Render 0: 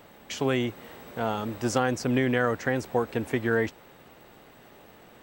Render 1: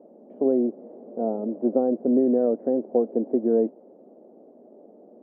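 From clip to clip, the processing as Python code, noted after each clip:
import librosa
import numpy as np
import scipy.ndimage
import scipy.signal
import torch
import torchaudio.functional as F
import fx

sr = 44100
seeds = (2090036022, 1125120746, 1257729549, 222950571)

y = scipy.signal.sosfilt(scipy.signal.cheby1(3, 1.0, [220.0, 640.0], 'bandpass', fs=sr, output='sos'), x)
y = y * 10.0 ** (6.0 / 20.0)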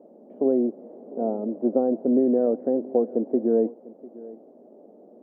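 y = x + 10.0 ** (-20.0 / 20.0) * np.pad(x, (int(698 * sr / 1000.0), 0))[:len(x)]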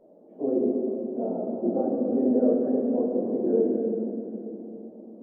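y = fx.phase_scramble(x, sr, seeds[0], window_ms=50)
y = fx.room_shoebox(y, sr, seeds[1], volume_m3=150.0, walls='hard', distance_m=0.51)
y = y * 10.0 ** (-6.0 / 20.0)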